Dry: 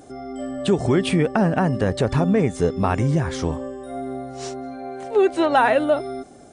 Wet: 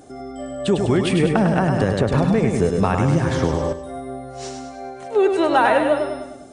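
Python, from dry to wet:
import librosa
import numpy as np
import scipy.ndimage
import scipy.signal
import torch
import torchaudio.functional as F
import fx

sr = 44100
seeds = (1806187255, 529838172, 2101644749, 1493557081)

y = fx.echo_feedback(x, sr, ms=101, feedback_pct=50, wet_db=-5.5)
y = fx.band_squash(y, sr, depth_pct=100, at=(1.23, 3.73))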